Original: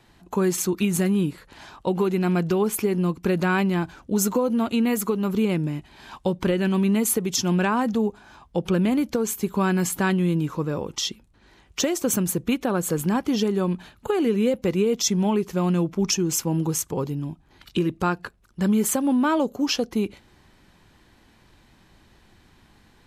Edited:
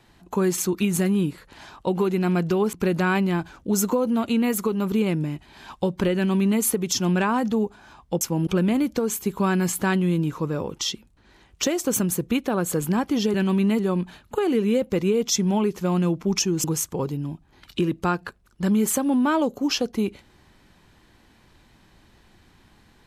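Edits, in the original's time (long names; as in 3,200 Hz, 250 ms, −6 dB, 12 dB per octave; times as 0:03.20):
0:02.73–0:03.16: remove
0:06.59–0:07.04: duplicate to 0:13.51
0:16.36–0:16.62: move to 0:08.64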